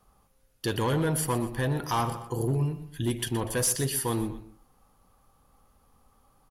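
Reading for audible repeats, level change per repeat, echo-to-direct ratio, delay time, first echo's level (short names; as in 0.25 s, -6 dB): 2, -8.0 dB, -12.5 dB, 0.121 s, -13.0 dB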